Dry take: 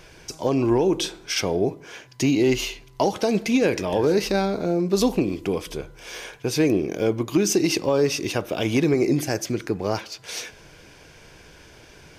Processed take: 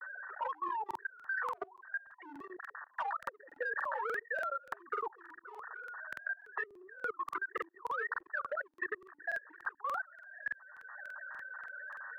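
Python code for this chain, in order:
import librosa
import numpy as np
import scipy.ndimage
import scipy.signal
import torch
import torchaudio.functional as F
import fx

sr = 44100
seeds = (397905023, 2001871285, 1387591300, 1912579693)

p1 = fx.sine_speech(x, sr)
p2 = fx.brickwall_lowpass(p1, sr, high_hz=1900.0)
p3 = fx.env_flanger(p2, sr, rest_ms=8.7, full_db=-8.5)
p4 = scipy.signal.sosfilt(scipy.signal.butter(4, 1100.0, 'highpass', fs=sr, output='sos'), p3)
p5 = 10.0 ** (-33.5 / 20.0) * np.tanh(p4 / 10.0 ** (-33.5 / 20.0))
p6 = p4 + (p5 * librosa.db_to_amplitude(-3.5))
p7 = fx.level_steps(p6, sr, step_db=23)
p8 = fx.buffer_crackle(p7, sr, first_s=0.86, period_s=0.29, block=2048, kind='repeat')
p9 = fx.band_squash(p8, sr, depth_pct=70)
y = p9 * librosa.db_to_amplitude(10.5)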